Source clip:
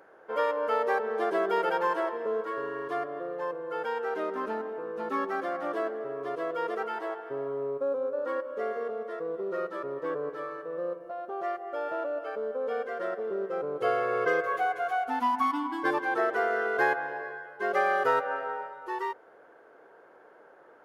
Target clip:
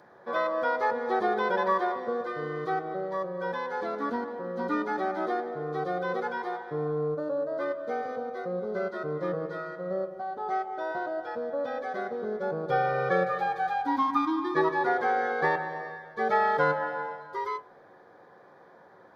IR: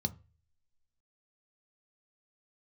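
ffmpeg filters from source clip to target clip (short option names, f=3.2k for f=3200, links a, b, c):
-filter_complex "[0:a]asetrate=48000,aresample=44100,asplit=2[a][b];[1:a]atrim=start_sample=2205,highshelf=f=2.8k:g=3.5[c];[b][c]afir=irnorm=-1:irlink=0,volume=2.5dB[d];[a][d]amix=inputs=2:normalize=0,acrossover=split=3900[e][f];[f]acompressor=threshold=-58dB:ratio=4:attack=1:release=60[g];[e][g]amix=inputs=2:normalize=0,volume=-3dB"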